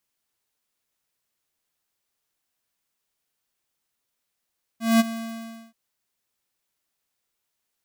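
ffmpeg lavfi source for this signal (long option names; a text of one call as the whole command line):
ffmpeg -f lavfi -i "aevalsrc='0.178*(2*lt(mod(227*t,1),0.5)-1)':duration=0.93:sample_rate=44100,afade=type=in:duration=0.199,afade=type=out:start_time=0.199:duration=0.026:silence=0.168,afade=type=out:start_time=0.29:duration=0.64" out.wav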